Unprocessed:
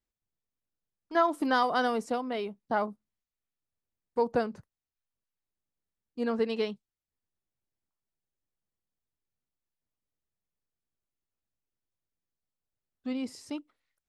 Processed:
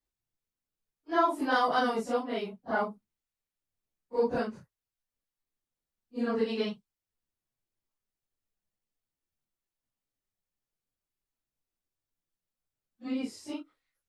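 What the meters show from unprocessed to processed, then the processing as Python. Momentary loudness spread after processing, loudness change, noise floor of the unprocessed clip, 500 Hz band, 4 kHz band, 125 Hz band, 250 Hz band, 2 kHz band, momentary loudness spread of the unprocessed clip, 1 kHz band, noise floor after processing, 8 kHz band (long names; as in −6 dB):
15 LU, 0.0 dB, below −85 dBFS, −0.5 dB, 0.0 dB, +1.0 dB, 0.0 dB, +0.5 dB, 15 LU, −0.5 dB, below −85 dBFS, can't be measured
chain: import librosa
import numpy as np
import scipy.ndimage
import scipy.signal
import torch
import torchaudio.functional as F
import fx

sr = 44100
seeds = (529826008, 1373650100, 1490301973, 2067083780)

y = fx.phase_scramble(x, sr, seeds[0], window_ms=100)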